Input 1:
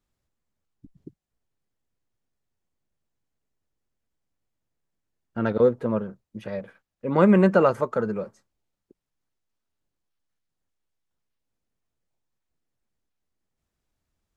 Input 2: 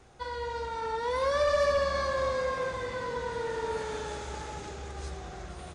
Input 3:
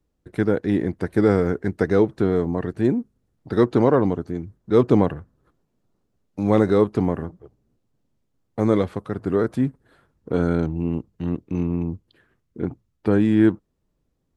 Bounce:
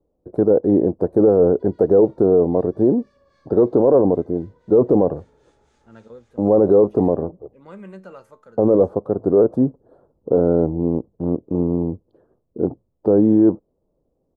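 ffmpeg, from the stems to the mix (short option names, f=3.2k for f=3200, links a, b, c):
-filter_complex "[0:a]highshelf=f=3.4k:g=11.5,flanger=delay=8.7:depth=3.3:regen=80:speed=0.17:shape=sinusoidal,adelay=500,volume=-18.5dB[a];[1:a]acompressor=threshold=-37dB:ratio=6,acrossover=split=1200[b][c];[b]aeval=exprs='val(0)*(1-0.7/2+0.7/2*cos(2*PI*3.8*n/s))':c=same[d];[c]aeval=exprs='val(0)*(1-0.7/2-0.7/2*cos(2*PI*3.8*n/s))':c=same[e];[d][e]amix=inputs=2:normalize=0,adelay=1400,volume=-18dB[f];[2:a]firequalizer=gain_entry='entry(110,0);entry(530,14);entry(2100,-28);entry(4700,-18)':delay=0.05:min_phase=1,volume=-0.5dB[g];[a][f][g]amix=inputs=3:normalize=0,alimiter=limit=-6dB:level=0:latency=1:release=15"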